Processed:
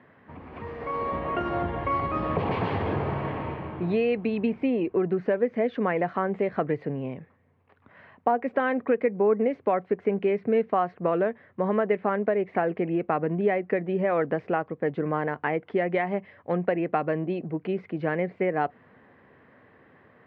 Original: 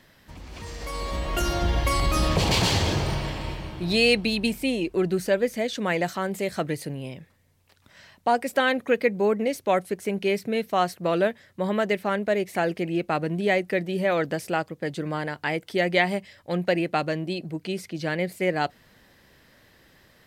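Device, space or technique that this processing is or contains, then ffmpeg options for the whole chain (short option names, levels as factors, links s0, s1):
bass amplifier: -af "acompressor=threshold=0.0631:ratio=5,highpass=f=83:w=0.5412,highpass=f=83:w=1.3066,equalizer=f=250:t=q:w=4:g=5,equalizer=f=440:t=q:w=4:g=7,equalizer=f=740:t=q:w=4:g=4,equalizer=f=1100:t=q:w=4:g=6,lowpass=f=2200:w=0.5412,lowpass=f=2200:w=1.3066"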